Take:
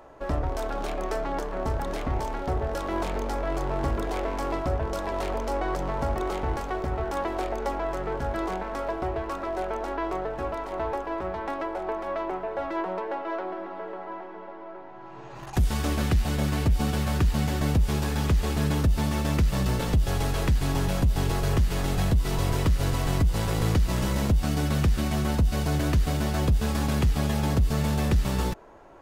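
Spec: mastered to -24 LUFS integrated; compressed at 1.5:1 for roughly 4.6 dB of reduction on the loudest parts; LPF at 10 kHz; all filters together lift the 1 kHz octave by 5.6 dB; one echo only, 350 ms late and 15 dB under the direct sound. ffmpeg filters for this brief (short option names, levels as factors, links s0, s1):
-af "lowpass=10000,equalizer=f=1000:t=o:g=7,acompressor=threshold=0.0282:ratio=1.5,aecho=1:1:350:0.178,volume=1.88"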